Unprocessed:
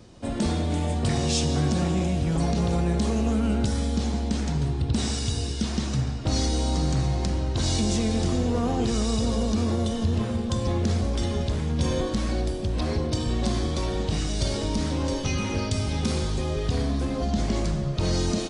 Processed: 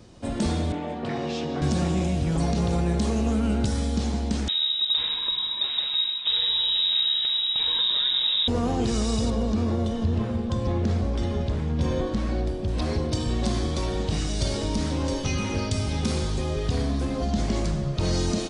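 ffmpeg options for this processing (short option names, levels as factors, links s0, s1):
-filter_complex "[0:a]asettb=1/sr,asplit=3[s0][s1][s2];[s0]atrim=end=0.724[s3];[s1]atrim=start=0.72:end=1.62,asetpts=PTS-STARTPTS,afade=t=in:d=0.004:c=qsin,afade=t=out:st=0.896:d=0.004:c=qsin,highpass=230,lowpass=2500[s4];[s2]atrim=start=1.616[s5];[s3][s4]acrossfade=d=0.004:c1=hsin:c2=qsin[s6];[s6][s5]acrossfade=d=0.004:c1=qsin:c2=hsin,asettb=1/sr,asplit=3[s7][s8][s9];[s7]atrim=end=4.484[s10];[s8]atrim=start=4.48:end=8.48,asetpts=PTS-STARTPTS,afade=t=in:d=0.004:c=qsin,afade=t=out:st=3.996:d=0.004:c=qsin,lowpass=f=3300:t=q:w=0.5098,lowpass=f=3300:t=q:w=0.6013,lowpass=f=3300:t=q:w=0.9,lowpass=f=3300:t=q:w=2.563,afreqshift=-3900[s11];[s9]atrim=start=8.476[s12];[s10][s11]acrossfade=d=0.004:c1=hsin:c2=qsin[s13];[s13][s12]acrossfade=d=0.004:c1=qsin:c2=hsin,asettb=1/sr,asplit=3[s14][s15][s16];[s14]atrim=end=9.304[s17];[s15]atrim=start=9.3:end=12.68,asetpts=PTS-STARTPTS,afade=t=in:d=0.004:c=qsin,afade=t=out:st=3.376:d=0.004:c=qsin,lowpass=f=2300:p=1[s18];[s16]atrim=start=12.676[s19];[s17][s18]acrossfade=d=0.004:c1=hsin:c2=qsin[s20];[s20][s19]acrossfade=d=0.004:c1=qsin:c2=hsin"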